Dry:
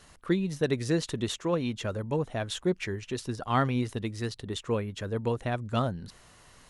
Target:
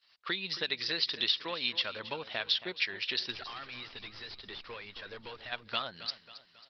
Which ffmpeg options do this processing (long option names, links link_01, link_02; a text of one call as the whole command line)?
ffmpeg -i in.wav -filter_complex "[0:a]agate=range=-33dB:threshold=-42dB:ratio=3:detection=peak,highpass=frequency=1300:poles=1,highshelf=frequency=2400:gain=4,acompressor=threshold=-41dB:ratio=5,crystalizer=i=8.5:c=0,asplit=3[link_01][link_02][link_03];[link_01]afade=type=out:start_time=3.31:duration=0.02[link_04];[link_02]aeval=exprs='(tanh(112*val(0)+0.35)-tanh(0.35))/112':channel_layout=same,afade=type=in:start_time=3.31:duration=0.02,afade=type=out:start_time=5.51:duration=0.02[link_05];[link_03]afade=type=in:start_time=5.51:duration=0.02[link_06];[link_04][link_05][link_06]amix=inputs=3:normalize=0,aecho=1:1:272|544|816|1088:0.188|0.0885|0.0416|0.0196,aresample=11025,aresample=44100,volume=3.5dB" -ar 48000 -c:a libopus -b:a 24k out.opus